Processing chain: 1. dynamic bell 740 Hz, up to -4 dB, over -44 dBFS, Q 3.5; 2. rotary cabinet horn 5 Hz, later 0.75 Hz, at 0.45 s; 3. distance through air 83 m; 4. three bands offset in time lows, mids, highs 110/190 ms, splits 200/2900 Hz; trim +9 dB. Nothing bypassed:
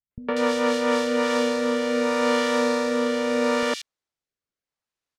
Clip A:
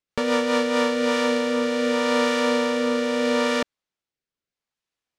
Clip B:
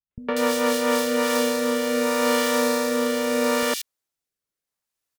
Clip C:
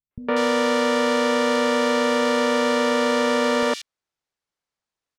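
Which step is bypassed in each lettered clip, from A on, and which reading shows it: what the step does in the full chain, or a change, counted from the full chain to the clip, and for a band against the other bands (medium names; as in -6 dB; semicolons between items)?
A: 4, echo-to-direct 21.0 dB to none; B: 3, 8 kHz band +7.0 dB; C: 2, 250 Hz band -2.0 dB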